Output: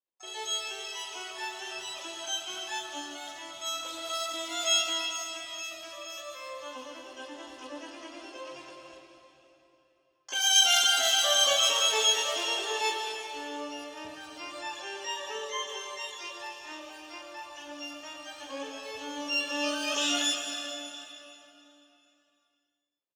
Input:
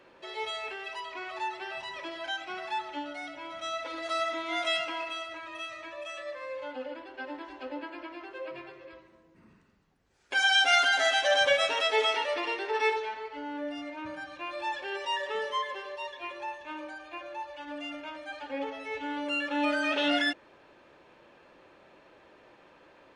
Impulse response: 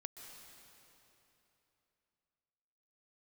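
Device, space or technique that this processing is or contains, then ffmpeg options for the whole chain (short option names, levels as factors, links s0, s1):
shimmer-style reverb: -filter_complex "[0:a]highshelf=f=2500:t=q:w=3:g=7,acrossover=split=3500[s0][s1];[s1]adelay=40[s2];[s0][s2]amix=inputs=2:normalize=0,agate=range=0.00708:threshold=0.00282:ratio=16:detection=peak,asettb=1/sr,asplit=3[s3][s4][s5];[s3]atrim=end=14.614[s6];[s4]atrim=start=14.61:end=15.69,asetpts=PTS-STARTPTS,afade=t=in:d=0.004:c=qsin,afade=t=out:st=1.076:d=0.004:c=qsin,bass=f=250:g=-2,treble=f=4000:g=-11[s7];[s5]atrim=start=15.686[s8];[s6][s7]acrossfade=d=0.004:c1=hsin:c2=qsin[s9];[s9][s8]acrossfade=d=0.004:c1=qsin:c2=hsin,asplit=2[s10][s11];[s11]asetrate=88200,aresample=44100,atempo=0.5,volume=0.562[s12];[s10][s12]amix=inputs=2:normalize=0[s13];[1:a]atrim=start_sample=2205[s14];[s13][s14]afir=irnorm=-1:irlink=0"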